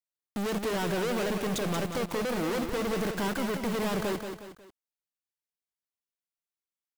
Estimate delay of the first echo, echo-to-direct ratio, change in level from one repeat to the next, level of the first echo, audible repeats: 181 ms, −6.0 dB, −7.5 dB, −7.0 dB, 3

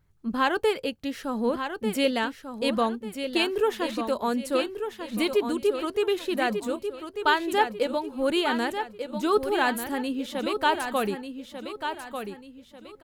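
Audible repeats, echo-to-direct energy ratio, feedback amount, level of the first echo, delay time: 3, −7.5 dB, 35%, −8.0 dB, 1,193 ms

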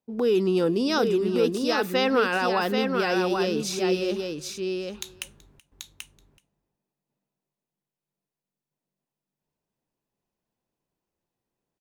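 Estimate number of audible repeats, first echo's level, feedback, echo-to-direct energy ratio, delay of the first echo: 3, −23.0 dB, repeats not evenly spaced, −4.5 dB, 378 ms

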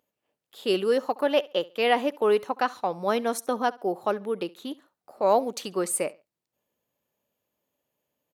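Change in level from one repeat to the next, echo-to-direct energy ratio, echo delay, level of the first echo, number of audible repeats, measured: −11.5 dB, −21.5 dB, 69 ms, −22.0 dB, 2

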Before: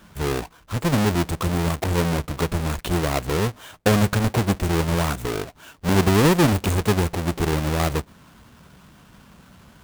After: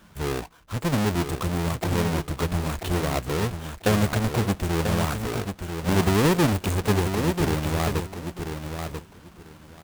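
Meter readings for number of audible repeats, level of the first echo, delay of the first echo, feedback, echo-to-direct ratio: 2, −7.0 dB, 990 ms, 18%, −7.0 dB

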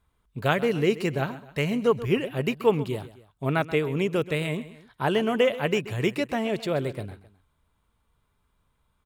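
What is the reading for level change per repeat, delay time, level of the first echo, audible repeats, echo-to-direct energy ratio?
−6.0 dB, 131 ms, −16.0 dB, 2, −15.0 dB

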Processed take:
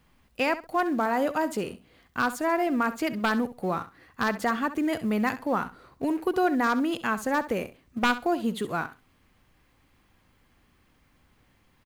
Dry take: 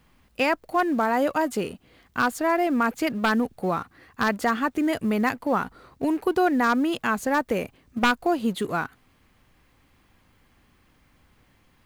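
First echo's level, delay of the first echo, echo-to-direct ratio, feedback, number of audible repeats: −14.0 dB, 66 ms, −14.0 dB, 18%, 2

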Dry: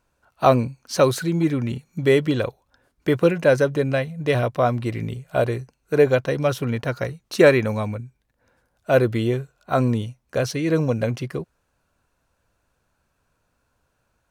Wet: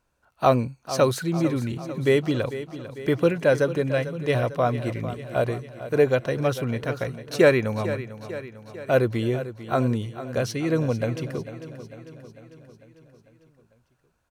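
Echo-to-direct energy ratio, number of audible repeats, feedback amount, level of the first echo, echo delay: −11.0 dB, 5, 58%, −13.0 dB, 448 ms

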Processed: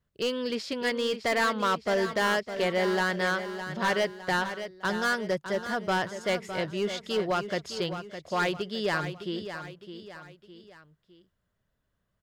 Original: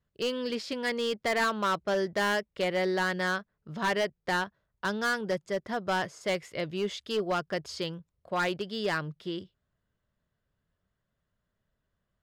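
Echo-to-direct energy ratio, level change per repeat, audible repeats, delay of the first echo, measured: −9.0 dB, −7.0 dB, 3, 610 ms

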